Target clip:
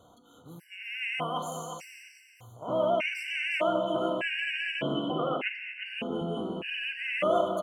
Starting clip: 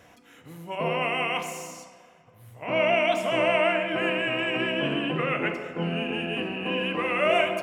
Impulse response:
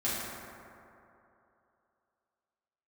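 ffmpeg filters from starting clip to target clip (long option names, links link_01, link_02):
-filter_complex "[0:a]asettb=1/sr,asplit=3[link_01][link_02][link_03];[link_01]atrim=end=5.104[link_04];[link_02]atrim=start=5.1:end=5.86,asetpts=PTS-STARTPTS,afade=type=in:duration=0.004:curve=qsin,afade=type=out:start_time=0.756:duration=0.004:curve=qsin,highpass=frequency=170:width=0.5412,highpass=frequency=170:width=1.3066,equalizer=frequency=740:width_type=q:width=4:gain=9,equalizer=frequency=1600:width_type=q:width=4:gain=-5,equalizer=frequency=2700:width_type=q:width=4:gain=5,lowpass=frequency=3600:width=0.5412,lowpass=frequency=3600:width=1.3066[link_05];[link_03]atrim=start=5.856[link_06];[link_04][link_05]acrossfade=duration=0.004:curve1=hsin:curve2=qsin[link_07];[link_07][link_06]acrossfade=duration=0.004:curve1=qsin:curve2=hsin,aecho=1:1:356|712|1068|1424:0.376|0.128|0.0434|0.0148,afftfilt=real='re*gt(sin(2*PI*0.83*pts/sr)*(1-2*mod(floor(b*sr/1024/1500),2)),0)':imag='im*gt(sin(2*PI*0.83*pts/sr)*(1-2*mod(floor(b*sr/1024/1500),2)),0)':win_size=1024:overlap=0.75,volume=-2.5dB"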